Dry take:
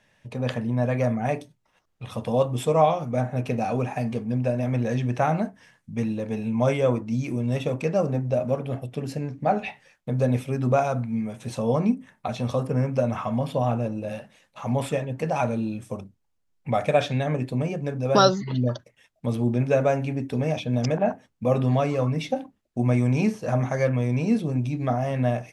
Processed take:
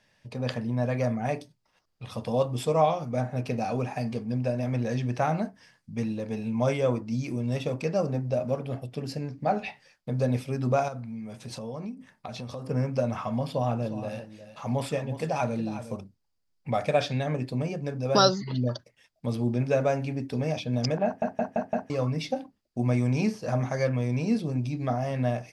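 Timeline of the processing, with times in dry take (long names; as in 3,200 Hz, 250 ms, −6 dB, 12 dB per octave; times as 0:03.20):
0:10.88–0:12.67: downward compressor 4 to 1, threshold −31 dBFS
0:13.45–0:15.96: single-tap delay 361 ms −12.5 dB
0:21.05: stutter in place 0.17 s, 5 plays
whole clip: parametric band 4,800 Hz +11 dB 0.34 octaves; level −3.5 dB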